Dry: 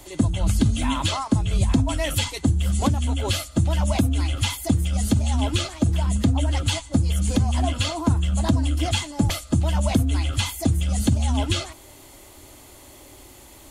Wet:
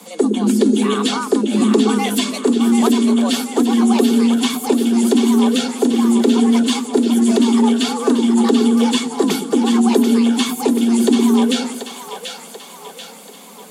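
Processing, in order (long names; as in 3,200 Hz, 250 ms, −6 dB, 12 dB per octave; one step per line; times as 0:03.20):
echo with a time of its own for lows and highs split 320 Hz, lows 108 ms, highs 736 ms, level −6.5 dB
frequency shifter +160 Hz
level +4 dB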